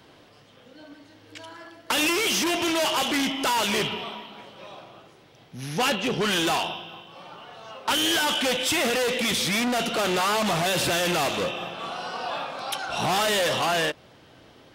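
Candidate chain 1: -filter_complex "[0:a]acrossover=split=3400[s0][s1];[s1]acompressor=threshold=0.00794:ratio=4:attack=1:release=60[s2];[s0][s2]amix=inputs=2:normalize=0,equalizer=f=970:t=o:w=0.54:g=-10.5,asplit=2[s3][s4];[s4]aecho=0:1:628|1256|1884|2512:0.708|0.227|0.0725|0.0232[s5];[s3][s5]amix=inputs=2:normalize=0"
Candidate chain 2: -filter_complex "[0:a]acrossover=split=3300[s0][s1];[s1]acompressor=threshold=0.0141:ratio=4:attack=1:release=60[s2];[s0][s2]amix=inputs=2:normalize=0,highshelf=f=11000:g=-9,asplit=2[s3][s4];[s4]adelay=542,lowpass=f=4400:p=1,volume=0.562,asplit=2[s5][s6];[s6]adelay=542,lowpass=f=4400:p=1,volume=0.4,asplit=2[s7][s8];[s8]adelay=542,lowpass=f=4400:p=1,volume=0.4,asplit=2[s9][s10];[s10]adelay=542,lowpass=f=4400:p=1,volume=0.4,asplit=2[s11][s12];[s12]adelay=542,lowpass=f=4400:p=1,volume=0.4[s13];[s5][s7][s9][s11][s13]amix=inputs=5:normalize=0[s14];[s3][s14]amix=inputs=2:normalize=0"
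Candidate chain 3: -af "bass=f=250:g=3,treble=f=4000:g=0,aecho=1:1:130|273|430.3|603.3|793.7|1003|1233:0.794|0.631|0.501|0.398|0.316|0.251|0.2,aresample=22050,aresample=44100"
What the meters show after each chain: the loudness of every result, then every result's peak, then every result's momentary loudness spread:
-25.5 LUFS, -25.0 LUFS, -20.5 LUFS; -14.0 dBFS, -13.0 dBFS, -8.0 dBFS; 12 LU, 13 LU, 12 LU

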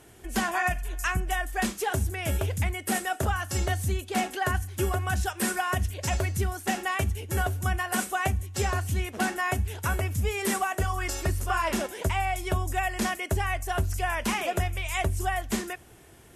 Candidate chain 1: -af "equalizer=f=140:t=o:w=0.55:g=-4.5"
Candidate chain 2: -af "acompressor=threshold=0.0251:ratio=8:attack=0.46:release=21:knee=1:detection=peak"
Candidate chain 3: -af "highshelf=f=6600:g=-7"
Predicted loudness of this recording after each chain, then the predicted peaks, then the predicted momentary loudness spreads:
-29.0 LUFS, -36.5 LUFS, -29.0 LUFS; -14.5 dBFS, -24.0 dBFS, -15.0 dBFS; 2 LU, 1 LU, 2 LU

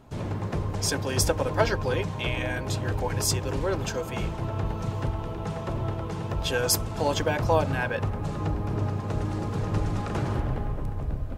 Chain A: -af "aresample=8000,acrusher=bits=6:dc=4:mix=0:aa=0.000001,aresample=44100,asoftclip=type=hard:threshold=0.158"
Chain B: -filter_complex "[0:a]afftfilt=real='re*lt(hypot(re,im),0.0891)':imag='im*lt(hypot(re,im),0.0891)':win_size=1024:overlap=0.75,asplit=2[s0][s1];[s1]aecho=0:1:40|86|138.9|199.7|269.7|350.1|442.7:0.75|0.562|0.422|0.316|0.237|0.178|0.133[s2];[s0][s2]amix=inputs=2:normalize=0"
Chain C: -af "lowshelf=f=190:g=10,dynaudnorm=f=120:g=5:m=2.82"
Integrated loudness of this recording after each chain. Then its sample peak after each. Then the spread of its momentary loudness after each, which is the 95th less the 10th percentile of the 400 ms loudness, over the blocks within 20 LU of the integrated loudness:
-28.5 LUFS, -33.0 LUFS, -17.0 LUFS; -16.0 dBFS, -16.5 dBFS, -1.5 dBFS; 5 LU, 7 LU, 3 LU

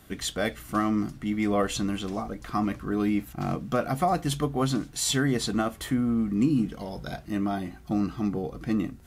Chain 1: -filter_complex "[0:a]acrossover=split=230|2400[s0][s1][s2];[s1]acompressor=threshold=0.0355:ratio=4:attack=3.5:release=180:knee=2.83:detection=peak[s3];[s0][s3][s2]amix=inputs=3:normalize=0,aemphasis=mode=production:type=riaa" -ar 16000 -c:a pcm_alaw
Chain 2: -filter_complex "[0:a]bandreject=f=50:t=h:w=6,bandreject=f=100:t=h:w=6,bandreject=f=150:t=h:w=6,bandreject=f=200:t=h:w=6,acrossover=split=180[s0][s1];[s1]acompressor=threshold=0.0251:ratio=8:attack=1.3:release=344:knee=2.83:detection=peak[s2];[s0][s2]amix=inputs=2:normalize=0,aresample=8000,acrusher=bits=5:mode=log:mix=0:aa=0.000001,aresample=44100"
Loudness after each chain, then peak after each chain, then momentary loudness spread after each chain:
-30.0 LUFS, -35.0 LUFS; -7.5 dBFS, -20.5 dBFS; 13 LU, 7 LU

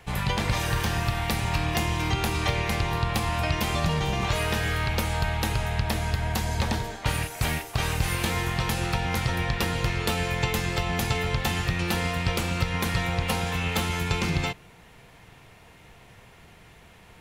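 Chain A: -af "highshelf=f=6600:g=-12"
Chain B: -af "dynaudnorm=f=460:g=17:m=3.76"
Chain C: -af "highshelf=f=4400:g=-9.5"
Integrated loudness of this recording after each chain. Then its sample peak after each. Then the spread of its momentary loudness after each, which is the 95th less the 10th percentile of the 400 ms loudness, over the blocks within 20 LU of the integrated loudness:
-27.5 LUFS, -19.5 LUFS, -27.5 LUFS; -12.5 dBFS, -2.5 dBFS, -12.5 dBFS; 2 LU, 9 LU, 2 LU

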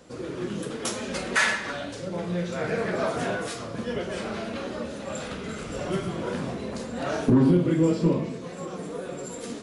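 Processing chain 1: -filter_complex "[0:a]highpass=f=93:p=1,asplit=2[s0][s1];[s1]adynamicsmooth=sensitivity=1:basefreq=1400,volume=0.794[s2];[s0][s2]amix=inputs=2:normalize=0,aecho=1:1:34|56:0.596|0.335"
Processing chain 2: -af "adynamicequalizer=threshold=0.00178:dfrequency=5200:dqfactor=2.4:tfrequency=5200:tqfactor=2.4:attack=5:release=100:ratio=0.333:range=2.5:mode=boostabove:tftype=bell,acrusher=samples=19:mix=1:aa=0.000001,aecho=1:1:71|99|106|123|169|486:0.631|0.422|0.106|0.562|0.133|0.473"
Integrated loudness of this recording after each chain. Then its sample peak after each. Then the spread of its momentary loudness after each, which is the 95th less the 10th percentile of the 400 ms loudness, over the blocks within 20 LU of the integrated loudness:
-21.5 LUFS, -24.5 LUFS; -2.0 dBFS, -5.0 dBFS; 15 LU, 13 LU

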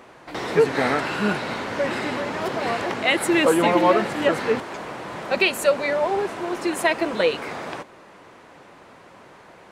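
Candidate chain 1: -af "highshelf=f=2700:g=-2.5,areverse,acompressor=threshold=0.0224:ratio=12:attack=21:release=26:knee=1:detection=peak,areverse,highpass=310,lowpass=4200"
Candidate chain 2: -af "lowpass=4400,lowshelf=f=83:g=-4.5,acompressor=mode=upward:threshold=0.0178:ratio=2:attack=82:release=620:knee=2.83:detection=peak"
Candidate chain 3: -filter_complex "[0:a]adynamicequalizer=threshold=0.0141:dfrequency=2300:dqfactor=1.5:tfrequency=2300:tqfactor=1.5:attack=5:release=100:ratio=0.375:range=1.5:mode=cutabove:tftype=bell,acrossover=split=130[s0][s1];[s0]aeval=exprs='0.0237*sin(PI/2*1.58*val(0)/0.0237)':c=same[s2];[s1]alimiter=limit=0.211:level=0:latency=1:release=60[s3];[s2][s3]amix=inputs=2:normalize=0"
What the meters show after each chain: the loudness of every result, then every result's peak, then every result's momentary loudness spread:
-32.5 LUFS, -22.5 LUFS, -25.0 LUFS; -19.0 dBFS, -5.5 dBFS, -12.5 dBFS; 17 LU, 15 LU, 12 LU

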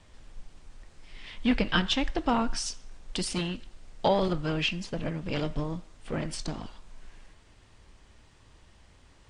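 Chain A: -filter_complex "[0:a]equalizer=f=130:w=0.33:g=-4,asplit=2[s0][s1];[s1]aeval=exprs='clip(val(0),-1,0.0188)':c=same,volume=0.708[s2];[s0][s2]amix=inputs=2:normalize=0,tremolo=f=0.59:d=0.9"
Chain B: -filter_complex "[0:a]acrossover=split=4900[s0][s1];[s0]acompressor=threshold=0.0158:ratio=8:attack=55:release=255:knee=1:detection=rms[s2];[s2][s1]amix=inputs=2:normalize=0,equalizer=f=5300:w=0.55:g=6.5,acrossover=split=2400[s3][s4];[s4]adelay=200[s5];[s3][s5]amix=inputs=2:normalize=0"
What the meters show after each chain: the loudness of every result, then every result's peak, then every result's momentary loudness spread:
-31.5 LUFS, -35.5 LUFS; -8.0 dBFS, -16.5 dBFS; 22 LU, 23 LU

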